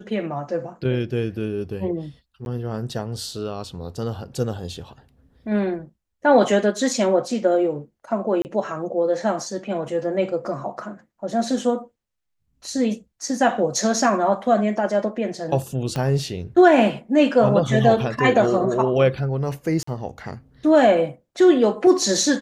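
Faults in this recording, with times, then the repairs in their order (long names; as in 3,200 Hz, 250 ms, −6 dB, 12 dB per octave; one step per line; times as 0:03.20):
0:02.45–0:02.46: drop-out 11 ms
0:08.42–0:08.45: drop-out 29 ms
0:15.96: click −13 dBFS
0:19.83–0:19.87: drop-out 44 ms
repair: click removal
repair the gap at 0:02.45, 11 ms
repair the gap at 0:08.42, 29 ms
repair the gap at 0:19.83, 44 ms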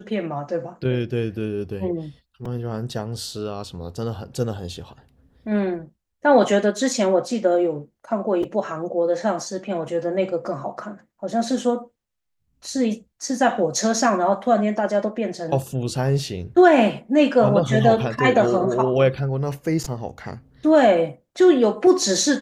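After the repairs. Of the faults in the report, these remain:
0:15.96: click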